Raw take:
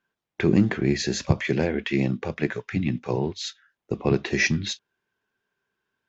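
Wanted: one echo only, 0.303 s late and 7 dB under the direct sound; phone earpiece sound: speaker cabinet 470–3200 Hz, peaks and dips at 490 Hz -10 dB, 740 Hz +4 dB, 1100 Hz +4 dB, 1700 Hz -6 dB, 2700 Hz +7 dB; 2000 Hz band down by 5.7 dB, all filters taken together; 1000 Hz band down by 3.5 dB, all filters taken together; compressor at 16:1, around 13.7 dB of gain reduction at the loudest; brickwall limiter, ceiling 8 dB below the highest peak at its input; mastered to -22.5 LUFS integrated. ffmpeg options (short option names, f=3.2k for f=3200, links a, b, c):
-af "equalizer=f=1k:t=o:g=-6.5,equalizer=f=2k:t=o:g=-6.5,acompressor=threshold=-27dB:ratio=16,alimiter=limit=-23.5dB:level=0:latency=1,highpass=470,equalizer=f=490:t=q:w=4:g=-10,equalizer=f=740:t=q:w=4:g=4,equalizer=f=1.1k:t=q:w=4:g=4,equalizer=f=1.7k:t=q:w=4:g=-6,equalizer=f=2.7k:t=q:w=4:g=7,lowpass=f=3.2k:w=0.5412,lowpass=f=3.2k:w=1.3066,aecho=1:1:303:0.447,volume=19.5dB"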